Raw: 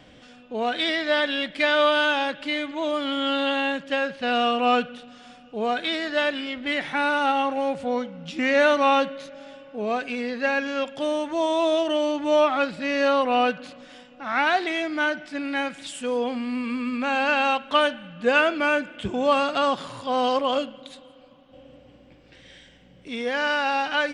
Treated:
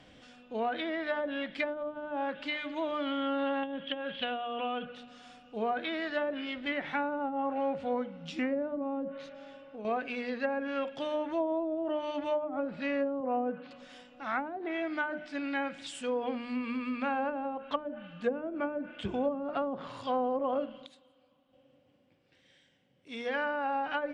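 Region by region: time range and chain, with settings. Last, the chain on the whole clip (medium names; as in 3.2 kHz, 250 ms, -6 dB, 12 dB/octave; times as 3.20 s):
3.63–4.85 s: compression 8:1, threshold -24 dBFS + resonant low-pass 3.3 kHz, resonance Q 14
9.32–9.85 s: low-pass 3.2 kHz 6 dB/octave + compression 3:1, threshold -34 dBFS
13.20–13.71 s: Chebyshev high-pass 150 Hz + distance through air 280 m
20.86–23.34 s: high-pass 41 Hz + upward expansion, over -44 dBFS
whole clip: hum notches 60/120/180/240/300/360/420/480/540/600 Hz; low-pass that closes with the level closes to 350 Hz, closed at -17 dBFS; trim -5.5 dB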